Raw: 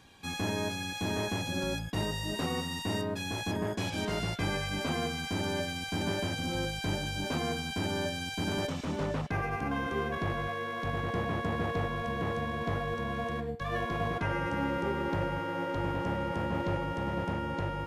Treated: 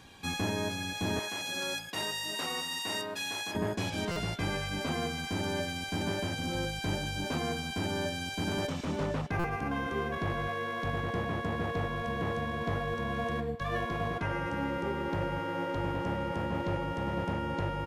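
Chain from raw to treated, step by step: 1.19–3.55 s: high-pass 1.3 kHz 6 dB/octave; gain riding 0.5 s; speakerphone echo 330 ms, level -20 dB; buffer glitch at 4.11/9.39 s, samples 256, times 8

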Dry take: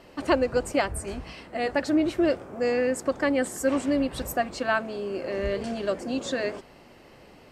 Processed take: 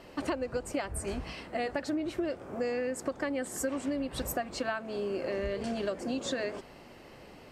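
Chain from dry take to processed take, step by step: compression 12:1, threshold -29 dBFS, peak gain reduction 13.5 dB

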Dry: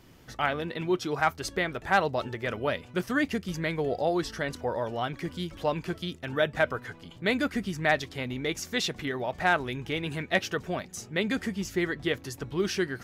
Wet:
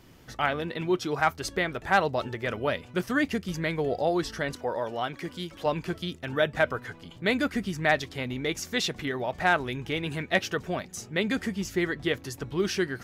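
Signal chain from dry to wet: 4.55–5.66 s: bass shelf 140 Hz -11.5 dB; trim +1 dB

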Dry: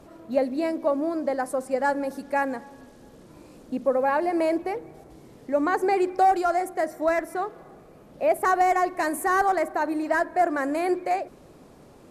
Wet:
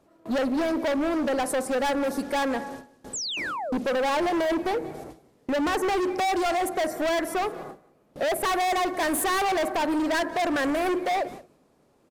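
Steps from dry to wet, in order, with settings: gate with hold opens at -37 dBFS; bass shelf 130 Hz -7 dB; in parallel at -1.5 dB: compression, threshold -28 dBFS, peak gain reduction 12 dB; on the sum: painted sound fall, 3.13–3.77 s, 380–8300 Hz -35 dBFS; hard clipper -27 dBFS, distortion -5 dB; on a send: delay 181 ms -20.5 dB; on the sum: trim +4 dB

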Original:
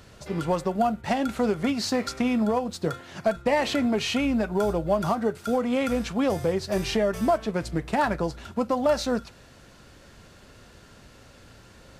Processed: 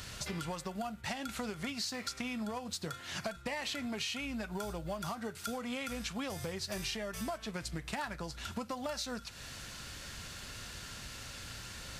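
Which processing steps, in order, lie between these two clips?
amplifier tone stack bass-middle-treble 5-5-5; compression 6:1, threshold -54 dBFS, peak gain reduction 19 dB; trim +17 dB

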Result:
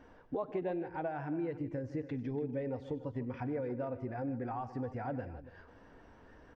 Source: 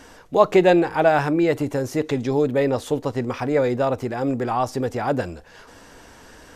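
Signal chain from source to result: spectral noise reduction 9 dB; compression 4:1, threshold -36 dBFS, peak gain reduction 22 dB; tape spacing loss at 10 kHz 40 dB; on a send: multi-tap echo 95/155/286 ms -18.5/-15.5/-15.5 dB

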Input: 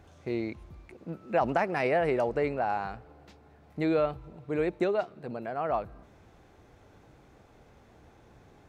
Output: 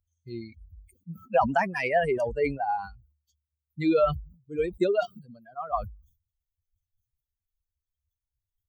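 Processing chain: expander on every frequency bin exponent 3; bass shelf 180 Hz -5 dB; decay stretcher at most 120 dB/s; trim +8.5 dB

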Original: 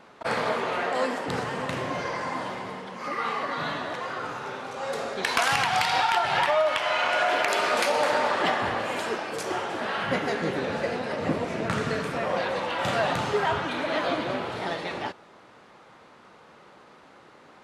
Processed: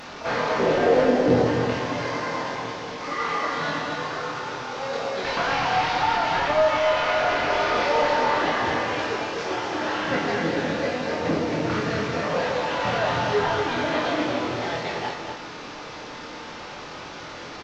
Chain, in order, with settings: one-bit delta coder 32 kbps, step -34.5 dBFS; 0.59–1.47 s: resonant low shelf 730 Hz +10 dB, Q 1.5; saturation -13 dBFS, distortion -19 dB; doubling 24 ms -4.5 dB; delay 237 ms -6 dB; FDN reverb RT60 1.3 s, low-frequency decay 1.5×, high-frequency decay 0.95×, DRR 7.5 dB

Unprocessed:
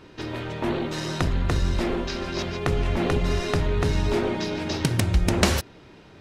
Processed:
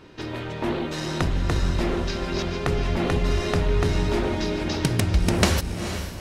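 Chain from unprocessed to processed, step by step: echo that smears into a reverb 461 ms, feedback 47%, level -9 dB

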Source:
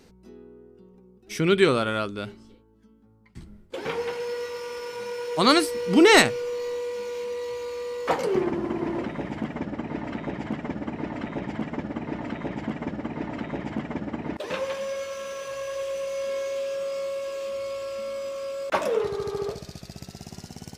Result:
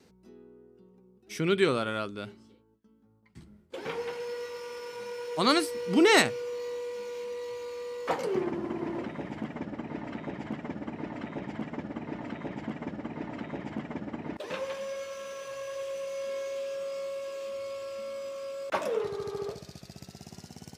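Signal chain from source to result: gate with hold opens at -51 dBFS; high-pass 80 Hz; trim -5.5 dB

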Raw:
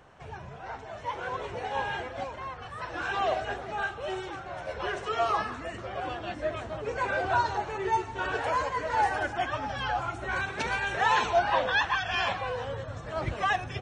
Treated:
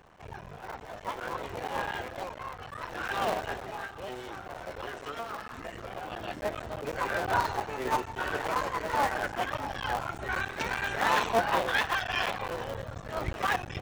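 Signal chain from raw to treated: cycle switcher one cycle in 3, muted; 3.65–6.12 s: compression 5:1, threshold -35 dBFS, peak gain reduction 11 dB

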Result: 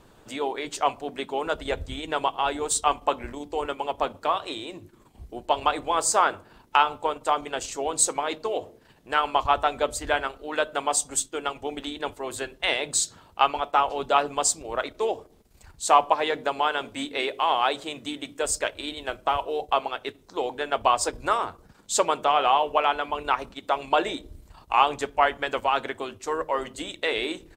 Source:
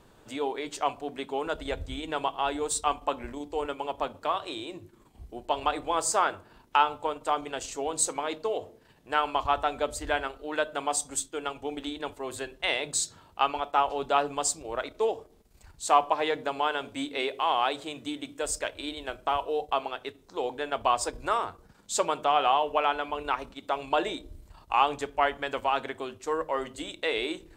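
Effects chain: harmonic-percussive split percussive +5 dB; harmony voices -3 st -16 dB

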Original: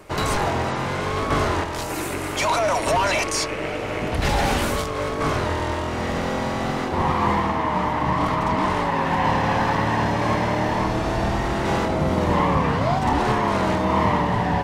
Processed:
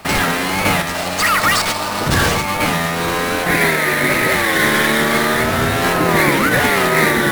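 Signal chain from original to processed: sample-rate reducer 6.5 kHz, jitter 20%; speed mistake 7.5 ips tape played at 15 ips; trim +6 dB

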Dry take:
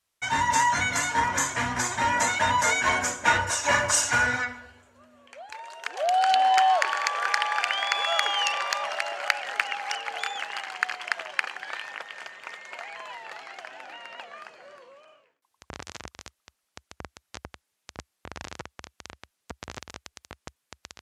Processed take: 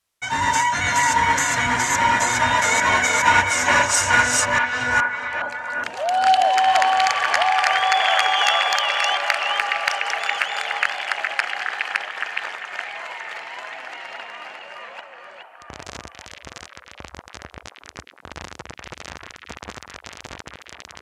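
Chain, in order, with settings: chunks repeated in reverse 417 ms, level 0 dB; repeats whose band climbs or falls 416 ms, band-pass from 2.5 kHz, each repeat -0.7 oct, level -1.5 dB; trim +2 dB

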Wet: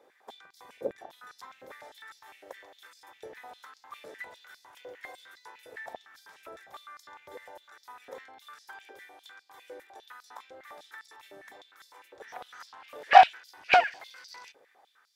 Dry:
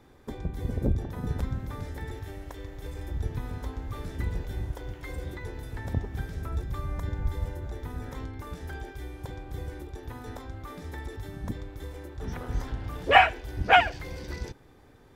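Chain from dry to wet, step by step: self-modulated delay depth 0.085 ms; step-sequenced high-pass 9.9 Hz 520–4800 Hz; trim -6 dB

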